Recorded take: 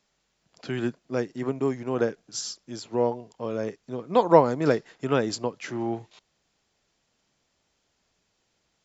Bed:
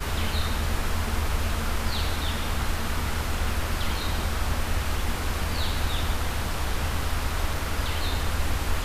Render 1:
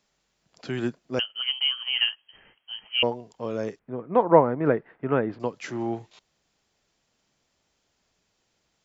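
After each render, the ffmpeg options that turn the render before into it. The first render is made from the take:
-filter_complex "[0:a]asettb=1/sr,asplit=3[s0][s1][s2];[s0]atrim=end=1.194[s3];[s1]atrim=start=1.19:end=3.03,asetpts=PTS-STARTPTS,afade=t=in:d=0.004:c=qsin,afade=t=out:st=1.836:d=0.004:c=qsin,lowpass=f=2800:t=q:w=0.5098,lowpass=f=2800:t=q:w=0.6013,lowpass=f=2800:t=q:w=0.9,lowpass=f=2800:t=q:w=2.563,afreqshift=-3300[s4];[s2]atrim=start=3.026[s5];[s3][s4]acrossfade=d=0.004:c1=hsin:c2=qsin[s6];[s6][s5]acrossfade=d=0.004:c1=qsin:c2=hsin,asettb=1/sr,asplit=3[s7][s8][s9];[s7]atrim=end=3.794[s10];[s8]atrim=start=3.79:end=5.4,asetpts=PTS-STARTPTS,afade=t=in:d=0.004:c=qsin,afade=t=out:st=1.606:d=0.004:c=qsin,lowpass=f=2100:w=0.5412,lowpass=f=2100:w=1.3066[s11];[s9]atrim=start=5.396[s12];[s10][s11]acrossfade=d=0.004:c1=hsin:c2=qsin[s13];[s13][s12]acrossfade=d=0.004:c1=qsin:c2=hsin"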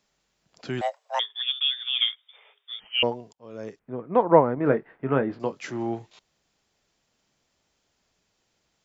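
-filter_complex "[0:a]asettb=1/sr,asplit=3[s0][s1][s2];[s0]atrim=end=0.814[s3];[s1]atrim=start=0.81:end=2.8,asetpts=PTS-STARTPTS,afade=t=in:d=0.004:c=qsin,afade=t=out:st=1.986:d=0.004:c=qsin,afreqshift=410[s4];[s2]atrim=start=2.796[s5];[s3][s4]acrossfade=d=0.004:c1=hsin:c2=qsin[s6];[s6][s5]acrossfade=d=0.004:c1=qsin:c2=hsin,asettb=1/sr,asplit=3[s7][s8][s9];[s7]atrim=end=4.554[s10];[s8]atrim=start=4.55:end=5.64,asetpts=PTS-STARTPTS,afade=t=in:d=0.004:c=qsin,afade=t=out:st=1.086:d=0.004:c=qsin,asplit=2[s11][s12];[s12]adelay=22,volume=0.355[s13];[s11][s13]amix=inputs=2:normalize=0,atrim=end_sample=48069[s14];[s9]atrim=start=5.636[s15];[s10][s14]acrossfade=d=0.004:c1=hsin:c2=qsin[s16];[s16][s15]acrossfade=d=0.004:c1=qsin:c2=hsin,asplit=2[s17][s18];[s17]atrim=end=3.33,asetpts=PTS-STARTPTS,afade=t=out:st=3.326:d=0.004:c=hsin[s19];[s18]atrim=start=3.33,asetpts=PTS-STARTPTS,afade=t=in:d=0.64[s20];[s19][s20]concat=n=2:v=0:a=1"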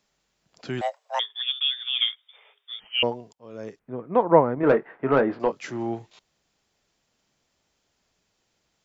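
-filter_complex "[0:a]asettb=1/sr,asplit=3[s0][s1][s2];[s0]atrim=end=4.634[s3];[s1]atrim=start=4.63:end=5.52,asetpts=PTS-STARTPTS,afade=t=in:d=0.004:c=qsin,afade=t=out:st=0.886:d=0.004:c=qsin,asplit=2[s4][s5];[s5]highpass=f=720:p=1,volume=7.08,asoftclip=type=tanh:threshold=0.447[s6];[s4][s6]amix=inputs=2:normalize=0,lowpass=f=1300:p=1,volume=0.501[s7];[s2]atrim=start=5.516[s8];[s3][s7]acrossfade=d=0.004:c1=hsin:c2=qsin[s9];[s9][s8]acrossfade=d=0.004:c1=qsin:c2=hsin"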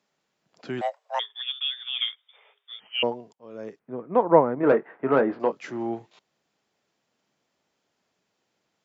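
-af "highpass=160,highshelf=f=3500:g=-8.5"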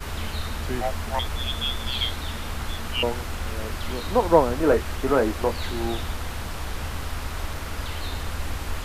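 -filter_complex "[1:a]volume=0.668[s0];[0:a][s0]amix=inputs=2:normalize=0"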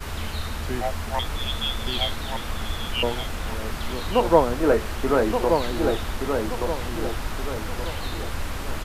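-filter_complex "[0:a]asplit=2[s0][s1];[s1]adelay=1175,lowpass=f=2000:p=1,volume=0.596,asplit=2[s2][s3];[s3]adelay=1175,lowpass=f=2000:p=1,volume=0.41,asplit=2[s4][s5];[s5]adelay=1175,lowpass=f=2000:p=1,volume=0.41,asplit=2[s6][s7];[s7]adelay=1175,lowpass=f=2000:p=1,volume=0.41,asplit=2[s8][s9];[s9]adelay=1175,lowpass=f=2000:p=1,volume=0.41[s10];[s0][s2][s4][s6][s8][s10]amix=inputs=6:normalize=0"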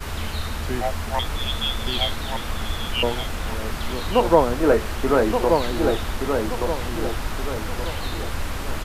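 -af "volume=1.26,alimiter=limit=0.794:level=0:latency=1"

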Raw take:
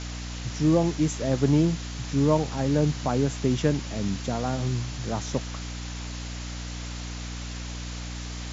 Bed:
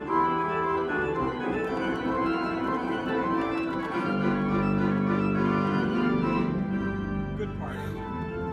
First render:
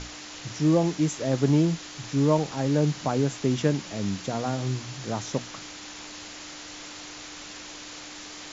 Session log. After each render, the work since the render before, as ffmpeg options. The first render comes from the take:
-af "bandreject=f=60:t=h:w=6,bandreject=f=120:t=h:w=6,bandreject=f=180:t=h:w=6,bandreject=f=240:t=h:w=6"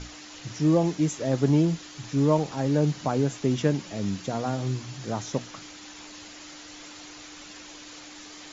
-af "afftdn=nr=6:nf=-42"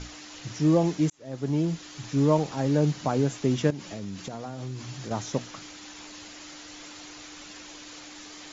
-filter_complex "[0:a]asettb=1/sr,asplit=3[s0][s1][s2];[s0]atrim=end=3.704[s3];[s1]atrim=start=3.7:end=5.11,asetpts=PTS-STARTPTS,afade=t=in:d=0.004:c=qsin,afade=t=out:st=1.406:d=0.004:c=qsin,acompressor=threshold=0.0282:ratio=10:attack=3.2:release=140:knee=1:detection=peak[s4];[s2]atrim=start=5.106[s5];[s3][s4]acrossfade=d=0.004:c1=hsin:c2=qsin[s6];[s6][s5]acrossfade=d=0.004:c1=qsin:c2=hsin,asplit=2[s7][s8];[s7]atrim=end=1.1,asetpts=PTS-STARTPTS,afade=t=out:st=1.096:d=0.004:c=hsin[s9];[s8]atrim=start=1.1,asetpts=PTS-STARTPTS,afade=t=in:d=0.83[s10];[s9][s10]concat=n=2:v=0:a=1"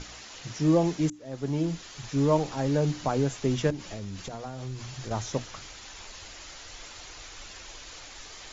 -af "bandreject=f=60:t=h:w=6,bandreject=f=120:t=h:w=6,bandreject=f=180:t=h:w=6,bandreject=f=240:t=h:w=6,bandreject=f=300:t=h:w=6,asubboost=boost=6.5:cutoff=69"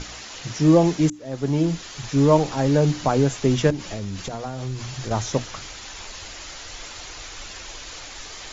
-af "volume=2.24"

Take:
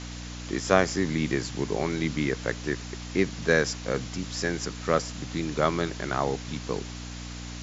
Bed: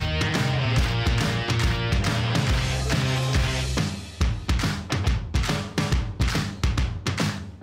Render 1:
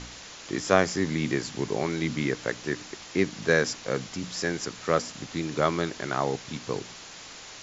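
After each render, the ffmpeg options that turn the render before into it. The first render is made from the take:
-af "bandreject=f=60:t=h:w=4,bandreject=f=120:t=h:w=4,bandreject=f=180:t=h:w=4,bandreject=f=240:t=h:w=4,bandreject=f=300:t=h:w=4"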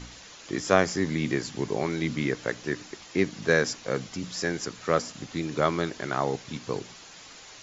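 -af "afftdn=nr=6:nf=-45"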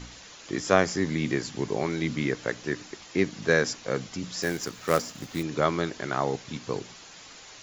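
-filter_complex "[0:a]asettb=1/sr,asplit=3[s0][s1][s2];[s0]atrim=end=4.424[s3];[s1]atrim=start=4.42:end=5.43,asetpts=PTS-STARTPTS,afade=t=in:d=0.004:c=qsin,afade=t=out:st=1.006:d=0.004:c=qsin,acrusher=bits=3:mode=log:mix=0:aa=0.000001[s4];[s2]atrim=start=5.426[s5];[s3][s4]acrossfade=d=0.004:c1=hsin:c2=qsin[s6];[s6][s5]acrossfade=d=0.004:c1=qsin:c2=hsin"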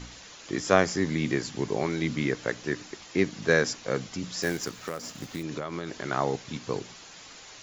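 -filter_complex "[0:a]asettb=1/sr,asplit=3[s0][s1][s2];[s0]atrim=end=4.834[s3];[s1]atrim=start=4.83:end=6.05,asetpts=PTS-STARTPTS,afade=t=in:d=0.004:c=qsin,afade=t=out:st=1.216:d=0.004:c=qsin,acompressor=threshold=0.0398:ratio=12:attack=3.2:release=140:knee=1:detection=peak[s4];[s2]atrim=start=6.046[s5];[s3][s4]acrossfade=d=0.004:c1=hsin:c2=qsin[s6];[s6][s5]acrossfade=d=0.004:c1=qsin:c2=hsin"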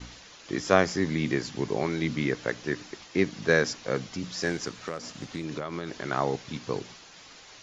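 -af "lowpass=f=6600:w=0.5412,lowpass=f=6600:w=1.3066,agate=range=0.0224:threshold=0.00562:ratio=3:detection=peak"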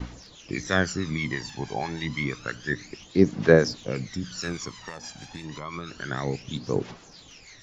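-filter_complex "[0:a]acrossover=split=1100[s0][s1];[s0]aeval=exprs='val(0)*(1-0.5/2+0.5/2*cos(2*PI*6.2*n/s))':c=same[s2];[s1]aeval=exprs='val(0)*(1-0.5/2-0.5/2*cos(2*PI*6.2*n/s))':c=same[s3];[s2][s3]amix=inputs=2:normalize=0,aphaser=in_gain=1:out_gain=1:delay=1.3:decay=0.72:speed=0.29:type=triangular"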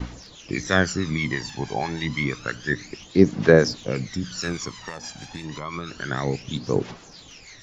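-af "volume=1.5,alimiter=limit=0.794:level=0:latency=1"

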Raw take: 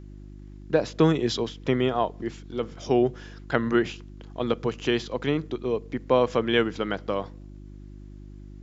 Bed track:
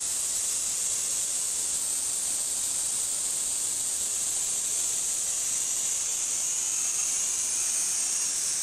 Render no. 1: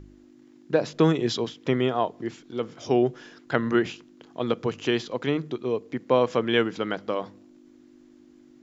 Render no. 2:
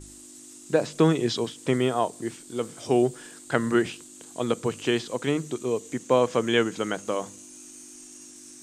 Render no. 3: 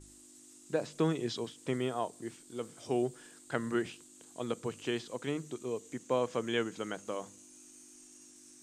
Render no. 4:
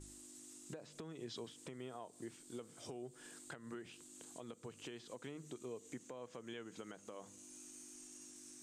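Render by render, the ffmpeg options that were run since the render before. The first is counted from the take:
-af "bandreject=f=50:t=h:w=4,bandreject=f=100:t=h:w=4,bandreject=f=150:t=h:w=4,bandreject=f=200:t=h:w=4"
-filter_complex "[1:a]volume=0.112[s0];[0:a][s0]amix=inputs=2:normalize=0"
-af "volume=0.316"
-af "acompressor=threshold=0.0141:ratio=10,alimiter=level_in=4.47:limit=0.0631:level=0:latency=1:release=426,volume=0.224"

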